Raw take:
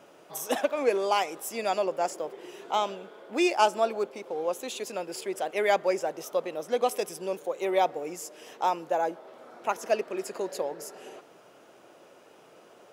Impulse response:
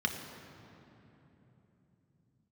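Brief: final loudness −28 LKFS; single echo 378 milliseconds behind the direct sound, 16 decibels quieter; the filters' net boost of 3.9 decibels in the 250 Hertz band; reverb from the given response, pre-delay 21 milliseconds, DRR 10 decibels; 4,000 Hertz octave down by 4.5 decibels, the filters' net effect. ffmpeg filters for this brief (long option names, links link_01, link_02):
-filter_complex "[0:a]equalizer=frequency=250:width_type=o:gain=6.5,equalizer=frequency=4000:width_type=o:gain=-6.5,aecho=1:1:378:0.158,asplit=2[link_01][link_02];[1:a]atrim=start_sample=2205,adelay=21[link_03];[link_02][link_03]afir=irnorm=-1:irlink=0,volume=-17dB[link_04];[link_01][link_04]amix=inputs=2:normalize=0"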